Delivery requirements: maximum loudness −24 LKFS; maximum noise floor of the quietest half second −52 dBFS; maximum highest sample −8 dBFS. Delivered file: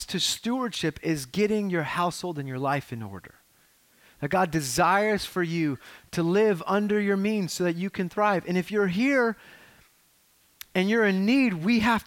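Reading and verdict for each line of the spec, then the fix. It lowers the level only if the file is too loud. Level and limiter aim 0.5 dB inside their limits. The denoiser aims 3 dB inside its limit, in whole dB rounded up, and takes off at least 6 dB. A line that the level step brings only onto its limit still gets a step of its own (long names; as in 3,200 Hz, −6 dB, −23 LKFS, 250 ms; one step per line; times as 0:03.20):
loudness −25.5 LKFS: in spec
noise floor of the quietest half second −63 dBFS: in spec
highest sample −10.0 dBFS: in spec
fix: no processing needed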